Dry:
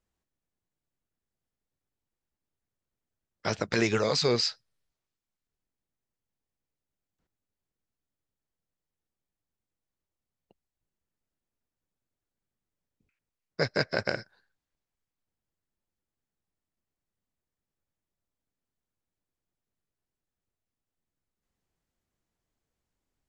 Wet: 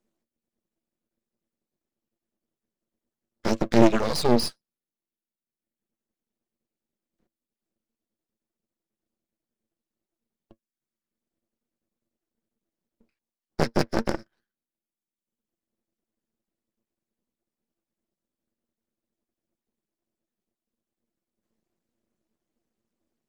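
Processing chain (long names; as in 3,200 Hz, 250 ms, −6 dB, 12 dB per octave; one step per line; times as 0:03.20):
reverb reduction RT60 1.2 s
hollow resonant body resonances 230/330 Hz, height 18 dB, ringing for 90 ms
asymmetric clip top −23.5 dBFS
high-pass filter 140 Hz 24 dB per octave
half-wave rectification
level +4.5 dB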